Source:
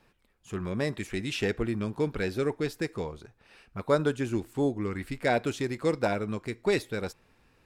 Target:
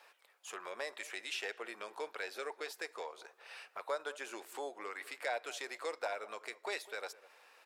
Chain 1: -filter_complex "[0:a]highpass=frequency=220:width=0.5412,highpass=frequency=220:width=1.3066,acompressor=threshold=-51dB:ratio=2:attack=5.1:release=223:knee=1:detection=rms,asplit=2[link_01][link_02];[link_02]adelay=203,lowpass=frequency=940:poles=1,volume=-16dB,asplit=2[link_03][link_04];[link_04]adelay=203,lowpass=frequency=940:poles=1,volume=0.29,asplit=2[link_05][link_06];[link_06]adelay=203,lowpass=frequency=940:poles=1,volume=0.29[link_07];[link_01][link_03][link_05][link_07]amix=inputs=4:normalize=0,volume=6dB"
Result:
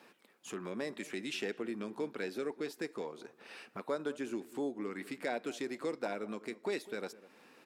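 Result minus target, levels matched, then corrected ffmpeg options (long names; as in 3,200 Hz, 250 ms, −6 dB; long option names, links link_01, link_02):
250 Hz band +14.5 dB
-filter_complex "[0:a]highpass=frequency=570:width=0.5412,highpass=frequency=570:width=1.3066,acompressor=threshold=-51dB:ratio=2:attack=5.1:release=223:knee=1:detection=rms,asplit=2[link_01][link_02];[link_02]adelay=203,lowpass=frequency=940:poles=1,volume=-16dB,asplit=2[link_03][link_04];[link_04]adelay=203,lowpass=frequency=940:poles=1,volume=0.29,asplit=2[link_05][link_06];[link_06]adelay=203,lowpass=frequency=940:poles=1,volume=0.29[link_07];[link_01][link_03][link_05][link_07]amix=inputs=4:normalize=0,volume=6dB"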